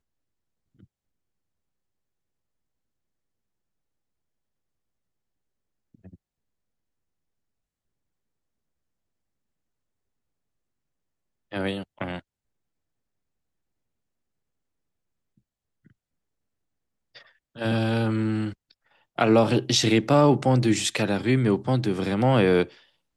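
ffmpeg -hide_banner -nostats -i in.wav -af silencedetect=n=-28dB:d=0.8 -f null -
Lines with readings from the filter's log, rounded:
silence_start: 0.00
silence_end: 11.53 | silence_duration: 11.53
silence_start: 12.17
silence_end: 17.59 | silence_duration: 5.42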